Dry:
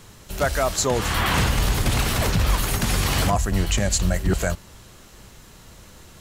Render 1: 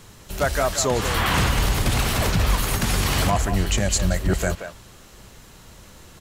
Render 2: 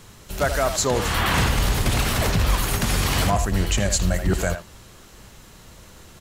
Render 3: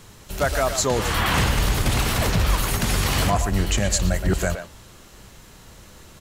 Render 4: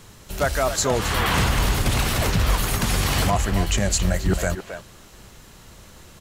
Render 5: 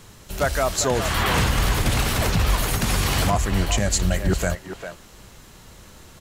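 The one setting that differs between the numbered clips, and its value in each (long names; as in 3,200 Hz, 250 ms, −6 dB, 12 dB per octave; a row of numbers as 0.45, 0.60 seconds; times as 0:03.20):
far-end echo of a speakerphone, delay time: 180, 80, 120, 270, 400 milliseconds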